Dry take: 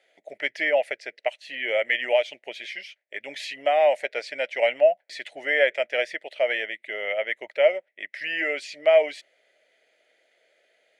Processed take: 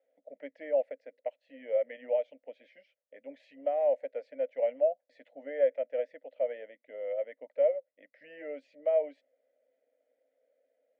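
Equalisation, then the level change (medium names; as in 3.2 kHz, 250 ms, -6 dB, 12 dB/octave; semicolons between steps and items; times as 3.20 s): two resonant band-passes 370 Hz, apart 0.92 oct; 0.0 dB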